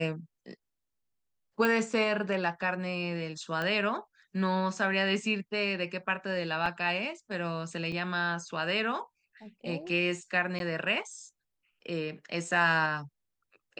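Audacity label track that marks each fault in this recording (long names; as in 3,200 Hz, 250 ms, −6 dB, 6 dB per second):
1.650000	1.650000	click −15 dBFS
3.620000	3.620000	click −20 dBFS
6.660000	6.660000	drop-out 2.4 ms
7.920000	7.920000	drop-out 3.1 ms
10.590000	10.600000	drop-out 12 ms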